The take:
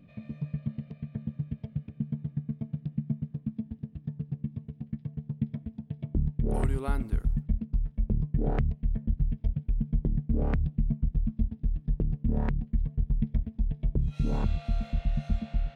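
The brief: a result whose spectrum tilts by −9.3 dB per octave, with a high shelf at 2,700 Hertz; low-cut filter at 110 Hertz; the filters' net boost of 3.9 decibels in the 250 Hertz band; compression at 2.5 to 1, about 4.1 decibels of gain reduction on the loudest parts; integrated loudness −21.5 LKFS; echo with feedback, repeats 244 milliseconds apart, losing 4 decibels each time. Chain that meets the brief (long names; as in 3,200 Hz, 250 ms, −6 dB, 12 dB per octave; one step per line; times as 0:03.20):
high-pass filter 110 Hz
parametric band 250 Hz +5.5 dB
high-shelf EQ 2,700 Hz +7 dB
downward compressor 2.5 to 1, threshold −29 dBFS
repeating echo 244 ms, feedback 63%, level −4 dB
level +11.5 dB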